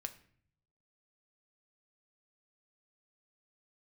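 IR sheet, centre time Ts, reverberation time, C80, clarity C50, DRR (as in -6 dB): 6 ms, 0.55 s, 18.0 dB, 14.5 dB, 7.0 dB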